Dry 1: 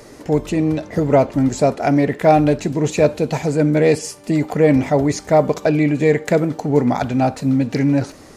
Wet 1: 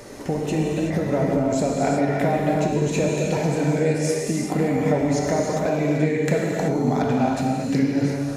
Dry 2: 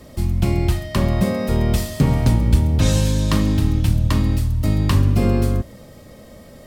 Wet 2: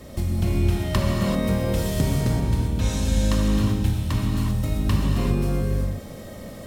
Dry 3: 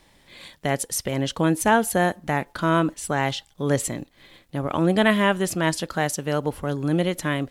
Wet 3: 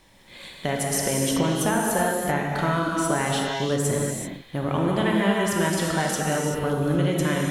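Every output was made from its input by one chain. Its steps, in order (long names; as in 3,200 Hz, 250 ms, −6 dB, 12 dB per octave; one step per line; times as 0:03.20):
notch filter 4,700 Hz, Q 22
downward compressor 6 to 1, threshold −22 dBFS
reverb whose tail is shaped and stops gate 410 ms flat, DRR −2.5 dB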